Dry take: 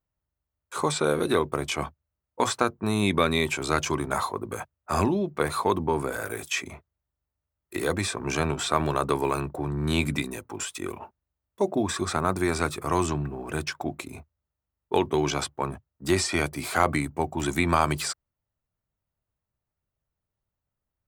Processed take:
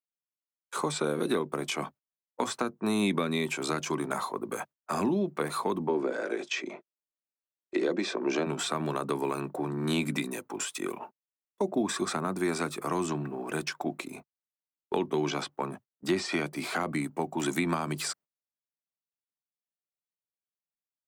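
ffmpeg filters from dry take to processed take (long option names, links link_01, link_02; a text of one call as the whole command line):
ffmpeg -i in.wav -filter_complex "[0:a]asplit=3[link_01][link_02][link_03];[link_01]afade=type=out:start_time=5.88:duration=0.02[link_04];[link_02]highpass=frequency=190:width=0.5412,highpass=frequency=190:width=1.3066,equalizer=frequency=350:width_type=q:width=4:gain=8,equalizer=frequency=560:width_type=q:width=4:gain=7,equalizer=frequency=1200:width_type=q:width=4:gain=-3,lowpass=frequency=5800:width=0.5412,lowpass=frequency=5800:width=1.3066,afade=type=in:start_time=5.88:duration=0.02,afade=type=out:start_time=8.45:duration=0.02[link_05];[link_03]afade=type=in:start_time=8.45:duration=0.02[link_06];[link_04][link_05][link_06]amix=inputs=3:normalize=0,asettb=1/sr,asplit=3[link_07][link_08][link_09];[link_07]atrim=end=13.854[link_10];[link_08]atrim=start=13.85:end=16.81,asetpts=PTS-STARTPTS,afade=type=in:duration=0.004:curve=qsin,afade=type=out:start_time=2.956:duration=0.004:curve=qsin,acrossover=split=5600[link_11][link_12];[link_12]acompressor=threshold=-46dB:ratio=4:attack=1:release=60[link_13];[link_11][link_13]amix=inputs=2:normalize=0[link_14];[link_09]atrim=start=16.806[link_15];[link_10][link_14]acrossfade=duration=0.004:curve1=hsin:curve2=qsin[link_16];[link_16][link_15]acrossfade=duration=0.004:curve1=qsin:curve2=hsin,highpass=frequency=170:width=0.5412,highpass=frequency=170:width=1.3066,agate=range=-19dB:threshold=-46dB:ratio=16:detection=peak,acrossover=split=290[link_17][link_18];[link_18]acompressor=threshold=-29dB:ratio=5[link_19];[link_17][link_19]amix=inputs=2:normalize=0" out.wav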